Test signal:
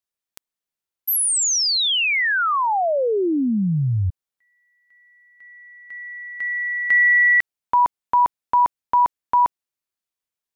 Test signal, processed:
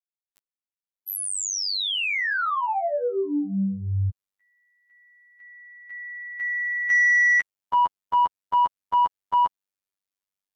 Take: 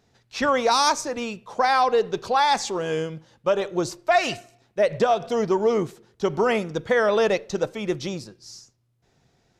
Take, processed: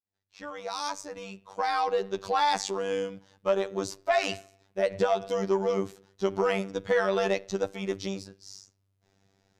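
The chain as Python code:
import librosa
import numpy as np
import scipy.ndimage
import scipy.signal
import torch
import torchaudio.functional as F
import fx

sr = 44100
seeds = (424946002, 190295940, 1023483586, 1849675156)

y = fx.fade_in_head(x, sr, length_s=2.43)
y = 10.0 ** (-10.0 / 20.0) * np.tanh(y / 10.0 ** (-10.0 / 20.0))
y = fx.robotise(y, sr, hz=97.4)
y = y * librosa.db_to_amplitude(-2.0)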